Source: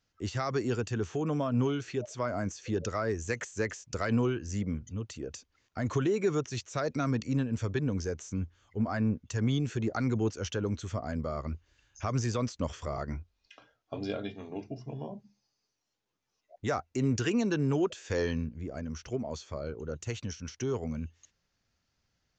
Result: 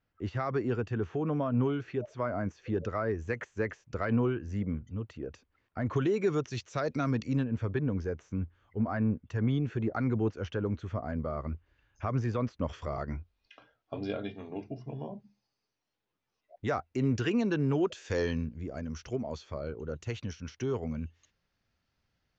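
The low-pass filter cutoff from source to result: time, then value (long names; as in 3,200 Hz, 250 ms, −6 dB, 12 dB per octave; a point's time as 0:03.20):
2,200 Hz
from 0:05.96 4,700 Hz
from 0:07.44 2,200 Hz
from 0:12.69 3,800 Hz
from 0:17.85 6,300 Hz
from 0:19.32 4,100 Hz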